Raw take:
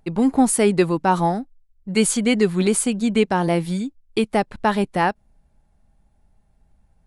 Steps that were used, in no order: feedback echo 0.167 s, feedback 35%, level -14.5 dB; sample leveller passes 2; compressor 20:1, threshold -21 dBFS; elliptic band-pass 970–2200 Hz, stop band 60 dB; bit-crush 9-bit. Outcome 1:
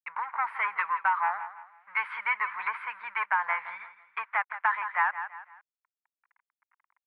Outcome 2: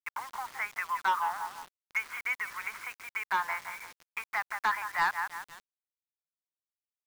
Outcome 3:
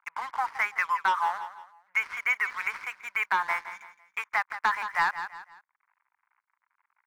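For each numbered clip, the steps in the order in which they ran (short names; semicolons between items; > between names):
sample leveller > feedback echo > bit-crush > elliptic band-pass > compressor; feedback echo > compressor > elliptic band-pass > bit-crush > sample leveller; bit-crush > elliptic band-pass > sample leveller > feedback echo > compressor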